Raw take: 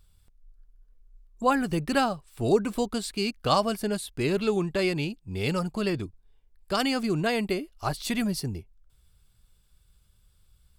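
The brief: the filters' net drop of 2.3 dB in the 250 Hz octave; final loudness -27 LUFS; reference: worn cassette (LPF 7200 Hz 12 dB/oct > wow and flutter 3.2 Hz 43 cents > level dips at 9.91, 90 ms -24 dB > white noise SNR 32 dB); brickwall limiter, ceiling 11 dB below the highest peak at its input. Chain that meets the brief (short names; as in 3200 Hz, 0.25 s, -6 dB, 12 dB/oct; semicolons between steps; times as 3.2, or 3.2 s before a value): bell 250 Hz -3 dB; limiter -19.5 dBFS; LPF 7200 Hz 12 dB/oct; wow and flutter 3.2 Hz 43 cents; level dips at 9.91, 90 ms -24 dB; white noise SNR 32 dB; gain +4 dB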